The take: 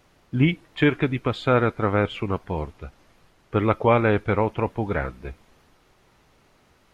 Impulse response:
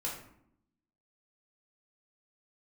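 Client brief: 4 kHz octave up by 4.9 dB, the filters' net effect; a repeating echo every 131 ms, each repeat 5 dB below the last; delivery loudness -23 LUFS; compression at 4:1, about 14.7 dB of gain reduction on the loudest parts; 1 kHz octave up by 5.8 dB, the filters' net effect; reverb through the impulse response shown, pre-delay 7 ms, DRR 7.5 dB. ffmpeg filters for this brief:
-filter_complex "[0:a]equalizer=f=1000:t=o:g=7,equalizer=f=4000:t=o:g=6,acompressor=threshold=0.0355:ratio=4,aecho=1:1:131|262|393|524|655|786|917:0.562|0.315|0.176|0.0988|0.0553|0.031|0.0173,asplit=2[s0][s1];[1:a]atrim=start_sample=2205,adelay=7[s2];[s1][s2]afir=irnorm=-1:irlink=0,volume=0.316[s3];[s0][s3]amix=inputs=2:normalize=0,volume=2.37"

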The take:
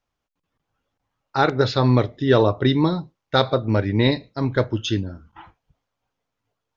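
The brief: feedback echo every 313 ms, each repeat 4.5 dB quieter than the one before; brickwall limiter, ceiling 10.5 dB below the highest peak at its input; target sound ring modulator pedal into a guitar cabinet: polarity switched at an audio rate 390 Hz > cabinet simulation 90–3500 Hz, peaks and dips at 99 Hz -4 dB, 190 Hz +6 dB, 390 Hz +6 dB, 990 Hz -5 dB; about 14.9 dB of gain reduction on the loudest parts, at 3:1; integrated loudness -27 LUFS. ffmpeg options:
-af "acompressor=threshold=0.0251:ratio=3,alimiter=level_in=1.12:limit=0.0631:level=0:latency=1,volume=0.891,aecho=1:1:313|626|939|1252|1565|1878|2191|2504|2817:0.596|0.357|0.214|0.129|0.0772|0.0463|0.0278|0.0167|0.01,aeval=exprs='val(0)*sgn(sin(2*PI*390*n/s))':c=same,highpass=90,equalizer=f=99:t=q:w=4:g=-4,equalizer=f=190:t=q:w=4:g=6,equalizer=f=390:t=q:w=4:g=6,equalizer=f=990:t=q:w=4:g=-5,lowpass=f=3500:w=0.5412,lowpass=f=3500:w=1.3066,volume=2.66"

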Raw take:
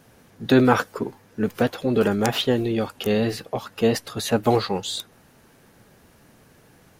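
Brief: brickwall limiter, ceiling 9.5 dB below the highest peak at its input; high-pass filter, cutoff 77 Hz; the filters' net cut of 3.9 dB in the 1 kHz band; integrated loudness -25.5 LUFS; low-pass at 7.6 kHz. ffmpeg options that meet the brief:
-af "highpass=77,lowpass=7600,equalizer=f=1000:t=o:g=-5.5,volume=1.12,alimiter=limit=0.224:level=0:latency=1"

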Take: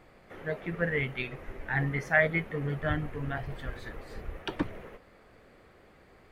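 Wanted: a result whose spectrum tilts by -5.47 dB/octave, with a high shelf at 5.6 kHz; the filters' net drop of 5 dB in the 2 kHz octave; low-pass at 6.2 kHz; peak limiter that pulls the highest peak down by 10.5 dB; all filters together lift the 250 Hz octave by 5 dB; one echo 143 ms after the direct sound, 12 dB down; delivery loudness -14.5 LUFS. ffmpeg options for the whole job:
-af "lowpass=6200,equalizer=f=250:t=o:g=7.5,equalizer=f=2000:t=o:g=-5.5,highshelf=f=5600:g=-4,alimiter=limit=0.075:level=0:latency=1,aecho=1:1:143:0.251,volume=10"

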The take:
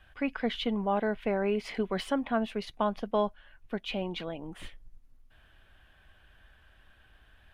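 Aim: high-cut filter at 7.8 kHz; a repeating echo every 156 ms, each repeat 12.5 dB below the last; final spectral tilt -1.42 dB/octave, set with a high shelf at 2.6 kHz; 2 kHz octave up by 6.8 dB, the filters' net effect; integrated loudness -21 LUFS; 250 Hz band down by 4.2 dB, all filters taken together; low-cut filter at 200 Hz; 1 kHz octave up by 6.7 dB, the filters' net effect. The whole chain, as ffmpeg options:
-af "highpass=200,lowpass=7800,equalizer=f=250:t=o:g=-3,equalizer=f=1000:t=o:g=7,equalizer=f=2000:t=o:g=4.5,highshelf=f=2600:g=4.5,aecho=1:1:156|312|468:0.237|0.0569|0.0137,volume=2.66"

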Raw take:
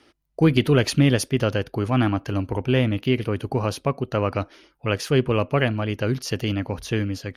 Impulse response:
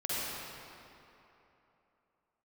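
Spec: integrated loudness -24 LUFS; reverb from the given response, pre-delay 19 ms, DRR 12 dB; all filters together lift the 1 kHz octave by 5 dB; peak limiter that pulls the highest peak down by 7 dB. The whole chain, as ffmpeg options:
-filter_complex "[0:a]equalizer=f=1000:t=o:g=6.5,alimiter=limit=0.316:level=0:latency=1,asplit=2[s0][s1];[1:a]atrim=start_sample=2205,adelay=19[s2];[s1][s2]afir=irnorm=-1:irlink=0,volume=0.112[s3];[s0][s3]amix=inputs=2:normalize=0,volume=0.944"

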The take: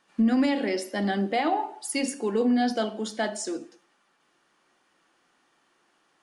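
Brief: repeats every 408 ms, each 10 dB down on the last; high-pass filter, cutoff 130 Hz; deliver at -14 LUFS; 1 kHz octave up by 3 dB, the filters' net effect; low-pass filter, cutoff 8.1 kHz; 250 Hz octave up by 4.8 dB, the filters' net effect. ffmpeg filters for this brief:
-af "highpass=130,lowpass=8100,equalizer=f=250:t=o:g=5.5,equalizer=f=1000:t=o:g=4,aecho=1:1:408|816|1224|1632:0.316|0.101|0.0324|0.0104,volume=2.66"

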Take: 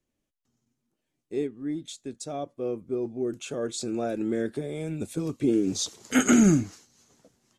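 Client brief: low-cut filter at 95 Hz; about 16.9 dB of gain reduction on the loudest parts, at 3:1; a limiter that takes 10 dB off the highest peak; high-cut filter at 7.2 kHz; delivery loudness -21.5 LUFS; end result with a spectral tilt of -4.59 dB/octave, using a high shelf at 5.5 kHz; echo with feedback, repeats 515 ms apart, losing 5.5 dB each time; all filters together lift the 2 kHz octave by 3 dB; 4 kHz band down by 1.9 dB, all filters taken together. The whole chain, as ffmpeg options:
-af "highpass=95,lowpass=7200,equalizer=f=2000:t=o:g=4.5,equalizer=f=4000:t=o:g=-5,highshelf=f=5500:g=4,acompressor=threshold=0.0112:ratio=3,alimiter=level_in=2.99:limit=0.0631:level=0:latency=1,volume=0.335,aecho=1:1:515|1030|1545|2060|2575|3090|3605:0.531|0.281|0.149|0.079|0.0419|0.0222|0.0118,volume=10.6"

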